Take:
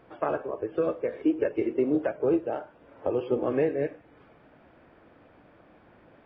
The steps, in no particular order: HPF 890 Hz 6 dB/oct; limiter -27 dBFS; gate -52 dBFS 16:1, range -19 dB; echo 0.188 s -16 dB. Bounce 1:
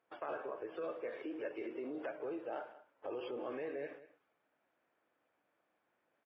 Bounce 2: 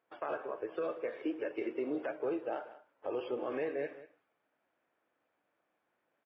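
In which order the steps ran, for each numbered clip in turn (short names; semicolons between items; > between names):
limiter > HPF > gate > echo; HPF > limiter > gate > echo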